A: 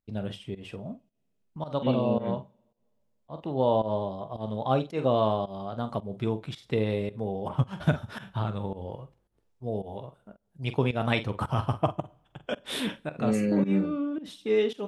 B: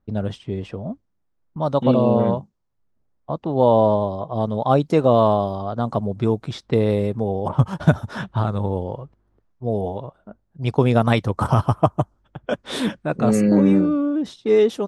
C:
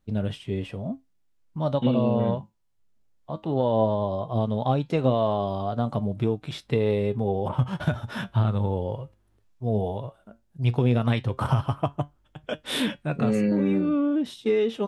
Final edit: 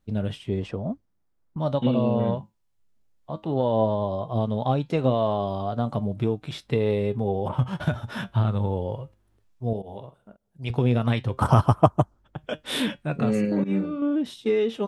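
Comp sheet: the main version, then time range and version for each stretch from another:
C
0:00.49–0:01.58: punch in from B
0:09.73–0:10.70: punch in from A
0:11.42–0:12.38: punch in from B
0:13.45–0:14.02: punch in from A

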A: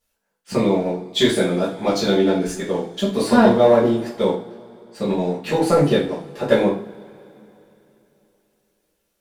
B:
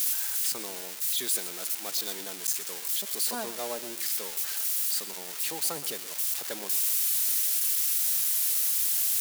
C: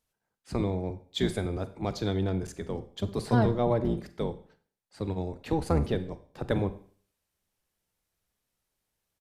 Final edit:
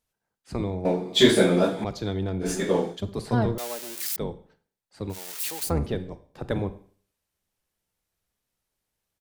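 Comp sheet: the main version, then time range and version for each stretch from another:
C
0:00.85–0:01.84: punch in from A
0:02.44–0:02.95: punch in from A, crossfade 0.10 s
0:03.58–0:04.16: punch in from B
0:05.14–0:05.67: punch in from B, crossfade 0.10 s

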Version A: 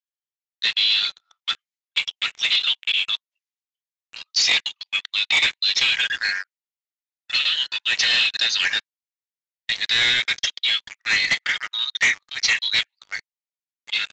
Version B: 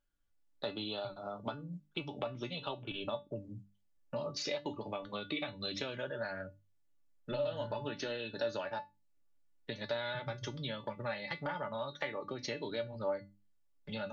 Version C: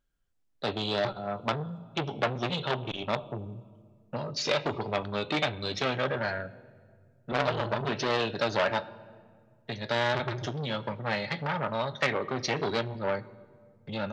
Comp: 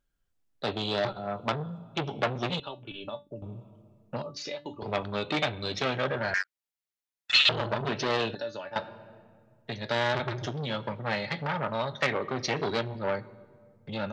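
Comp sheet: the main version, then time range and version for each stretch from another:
C
0:02.60–0:03.42: punch in from B
0:04.22–0:04.82: punch in from B
0:06.34–0:07.49: punch in from A
0:08.35–0:08.76: punch in from B

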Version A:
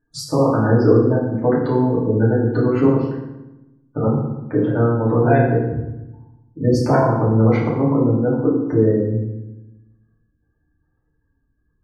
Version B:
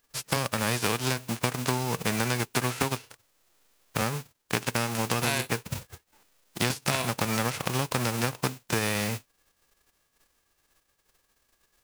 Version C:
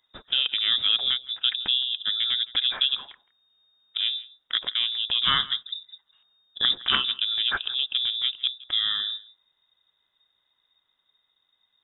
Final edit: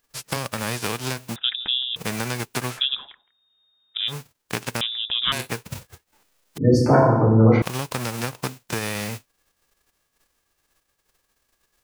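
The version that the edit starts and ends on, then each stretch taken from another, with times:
B
0:01.36–0:01.96: punch in from C
0:02.78–0:04.10: punch in from C, crossfade 0.06 s
0:04.81–0:05.32: punch in from C
0:06.58–0:07.62: punch in from A

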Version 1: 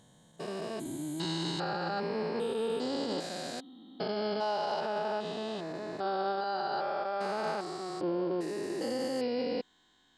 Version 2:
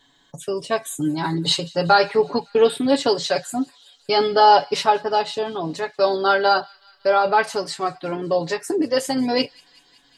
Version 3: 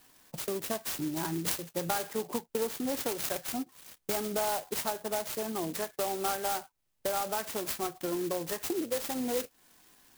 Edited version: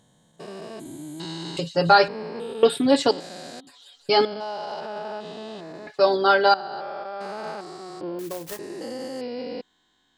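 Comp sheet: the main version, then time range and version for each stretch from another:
1
0:01.57–0:02.08: punch in from 2
0:02.63–0:03.11: punch in from 2
0:03.67–0:04.25: punch in from 2
0:05.87–0:06.54: punch in from 2
0:08.19–0:08.59: punch in from 3

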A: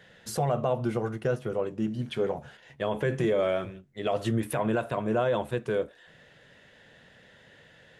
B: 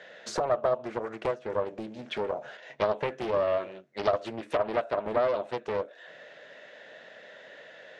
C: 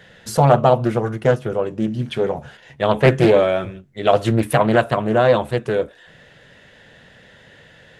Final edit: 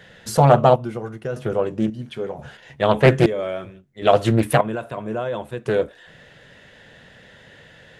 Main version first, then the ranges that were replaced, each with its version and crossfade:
C
0:00.76–0:01.36: punch in from A
0:01.90–0:02.39: punch in from A
0:03.26–0:04.02: punch in from A
0:04.61–0:05.66: punch in from A
not used: B

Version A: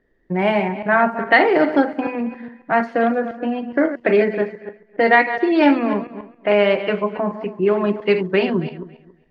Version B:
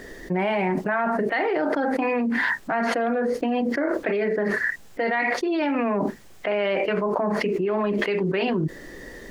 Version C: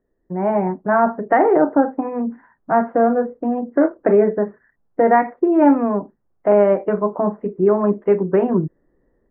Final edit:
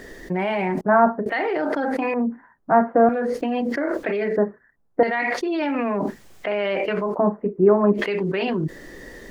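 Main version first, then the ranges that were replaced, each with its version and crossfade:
B
0:00.81–0:01.26: punch in from C
0:02.14–0:03.09: punch in from C
0:04.37–0:05.03: punch in from C
0:07.14–0:07.96: punch in from C, crossfade 0.06 s
not used: A

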